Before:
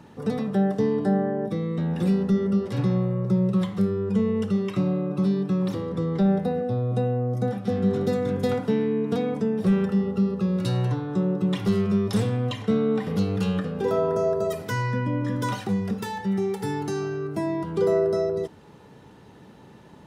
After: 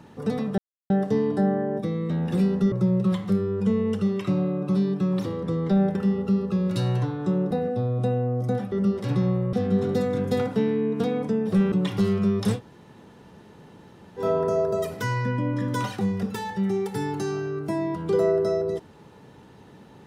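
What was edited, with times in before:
0.58 insert silence 0.32 s
2.4–3.21 move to 7.65
9.84–11.4 move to 6.44
12.24–13.89 room tone, crossfade 0.10 s

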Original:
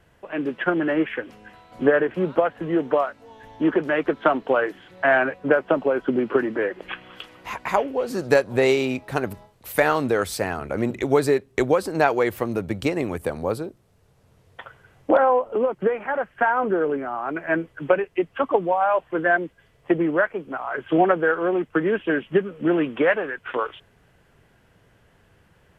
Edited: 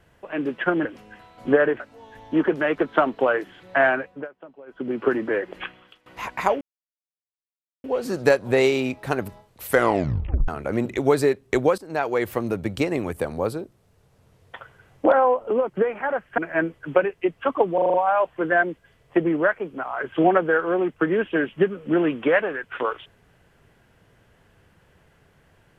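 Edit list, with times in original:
0.85–1.19 cut
2.14–3.08 cut
5.11–6.4 dip -23.5 dB, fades 0.46 s
6.91–7.34 fade out quadratic, to -18 dB
7.89 insert silence 1.23 s
9.71 tape stop 0.82 s
11.83–12.35 fade in, from -17 dB
16.43–17.32 cut
18.68 stutter 0.04 s, 6 plays

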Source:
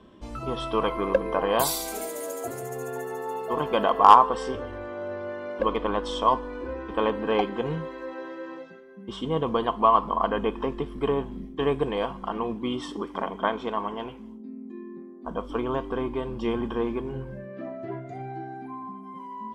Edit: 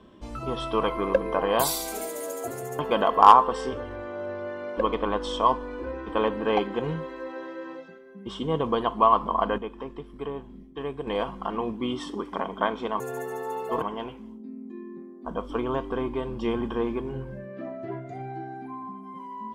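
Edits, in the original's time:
2.79–3.61 move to 13.82
10.4–11.89 gain -8.5 dB

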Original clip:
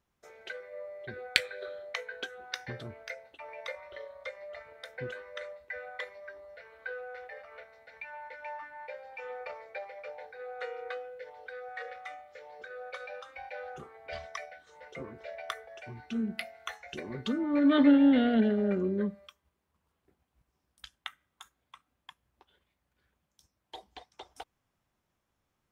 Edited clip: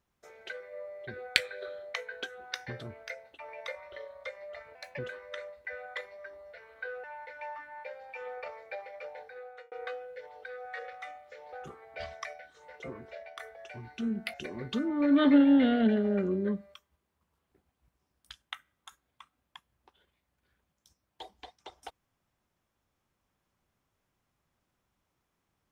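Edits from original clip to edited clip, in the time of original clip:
4.75–5.02 speed 114%
7.07–8.07 cut
10.31–10.75 fade out
12.56–13.65 cut
15.19–15.52 fade out, to -10 dB
16.46–16.87 cut

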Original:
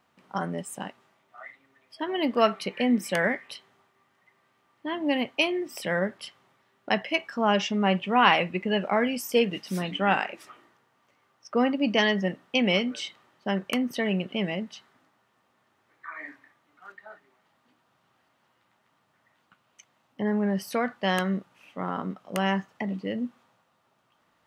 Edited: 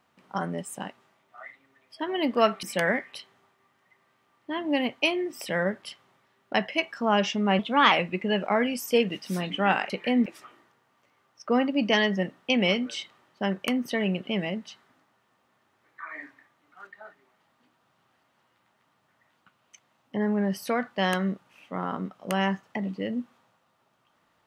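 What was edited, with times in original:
2.63–2.99 move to 10.31
7.95–8.33 speed 116%

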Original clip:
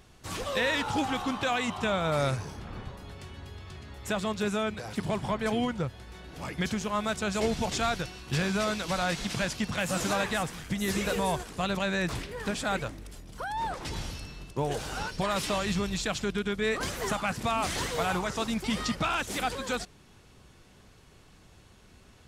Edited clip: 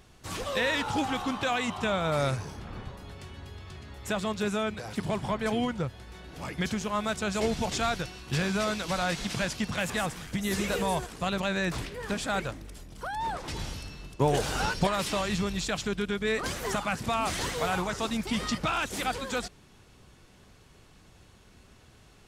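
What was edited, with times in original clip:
9.9–10.27 cut
14.57–15.24 gain +5.5 dB

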